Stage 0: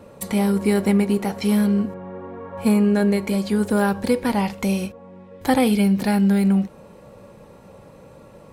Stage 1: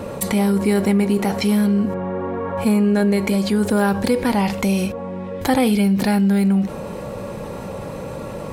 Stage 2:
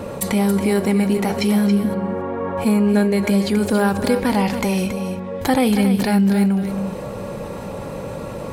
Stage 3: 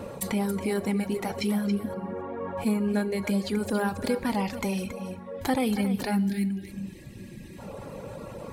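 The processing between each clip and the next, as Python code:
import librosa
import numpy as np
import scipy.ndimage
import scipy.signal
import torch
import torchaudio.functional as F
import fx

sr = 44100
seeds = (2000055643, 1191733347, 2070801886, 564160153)

y1 = fx.env_flatten(x, sr, amount_pct=50)
y2 = y1 + 10.0 ** (-9.0 / 20.0) * np.pad(y1, (int(277 * sr / 1000.0), 0))[:len(y1)]
y3 = fx.dereverb_blind(y2, sr, rt60_s=0.77)
y3 = fx.spec_box(y3, sr, start_s=6.23, length_s=1.36, low_hz=390.0, high_hz=1600.0, gain_db=-19)
y3 = fx.rev_plate(y3, sr, seeds[0], rt60_s=1.1, hf_ratio=0.95, predelay_ms=0, drr_db=16.5)
y3 = F.gain(torch.from_numpy(y3), -8.0).numpy()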